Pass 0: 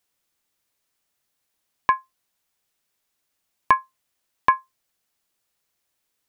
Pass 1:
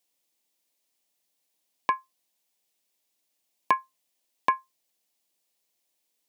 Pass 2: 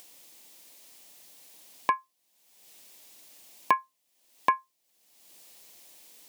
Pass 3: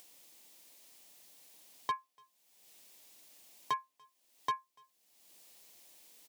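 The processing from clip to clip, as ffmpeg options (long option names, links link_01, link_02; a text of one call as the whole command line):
ffmpeg -i in.wav -af "highpass=230,equalizer=frequency=1400:width_type=o:width=0.86:gain=-11.5,bandreject=frequency=410:width=12" out.wav
ffmpeg -i in.wav -af "acompressor=mode=upward:threshold=-34dB:ratio=2.5" out.wav
ffmpeg -i in.wav -filter_complex "[0:a]asoftclip=type=hard:threshold=-21.5dB,asplit=2[link_01][link_02];[link_02]adelay=290,highpass=300,lowpass=3400,asoftclip=type=hard:threshold=-31dB,volume=-22dB[link_03];[link_01][link_03]amix=inputs=2:normalize=0,volume=-6dB" out.wav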